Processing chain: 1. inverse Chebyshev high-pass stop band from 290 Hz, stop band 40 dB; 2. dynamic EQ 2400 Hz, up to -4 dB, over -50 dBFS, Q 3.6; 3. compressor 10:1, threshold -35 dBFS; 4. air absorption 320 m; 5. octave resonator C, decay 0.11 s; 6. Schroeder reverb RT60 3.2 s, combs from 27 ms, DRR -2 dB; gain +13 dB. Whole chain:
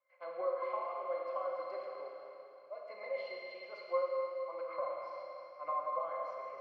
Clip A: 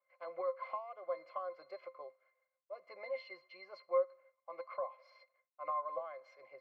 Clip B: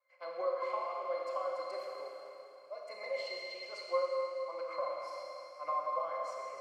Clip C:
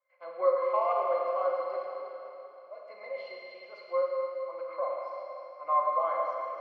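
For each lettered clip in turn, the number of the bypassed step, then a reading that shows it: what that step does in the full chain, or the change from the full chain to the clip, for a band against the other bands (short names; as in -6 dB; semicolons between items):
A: 6, momentary loudness spread change +6 LU; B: 4, 4 kHz band +9.0 dB; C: 3, mean gain reduction 3.5 dB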